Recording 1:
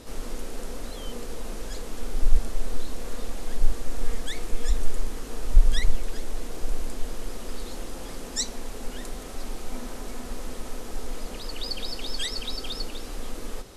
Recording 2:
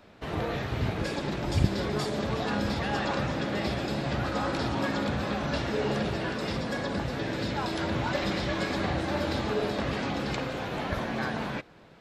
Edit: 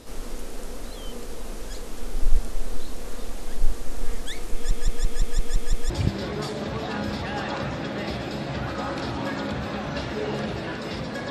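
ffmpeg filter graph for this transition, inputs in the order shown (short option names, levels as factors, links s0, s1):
-filter_complex "[0:a]apad=whole_dur=11.3,atrim=end=11.3,asplit=8[s0][s1][s2][s3][s4][s5][s6][s7];[s0]atrim=end=4.712[s8];[s1]atrim=start=4.538:end=4.712[s9];[s2]atrim=start=4.538:end=4.712[s10];[s3]atrim=start=4.538:end=4.712[s11];[s4]atrim=start=4.538:end=4.712[s12];[s5]atrim=start=4.538:end=4.712[s13];[s6]atrim=start=4.538:end=4.712[s14];[s7]atrim=start=4.538:end=4.712[s15];[1:a]atrim=start=1.468:end=6.87[s16];[s8][s9]acrossfade=d=0.004:c1=hsin:c2=hsin[s17];[s17][s10]acrossfade=d=0.004:c1=hsin:c2=hsin[s18];[s18][s11]acrossfade=d=0.004:c1=hsin:c2=hsin[s19];[s19][s12]acrossfade=d=0.004:c1=hsin:c2=hsin[s20];[s20][s13]acrossfade=d=0.004:c1=hsin:c2=hsin[s21];[s21][s14]acrossfade=d=0.004:c1=hsin:c2=hsin[s22];[s22][s15]acrossfade=d=0.004:c1=hsin:c2=hsin[s23];[s23][s16]acrossfade=d=0.004:c1=hsin:c2=hsin"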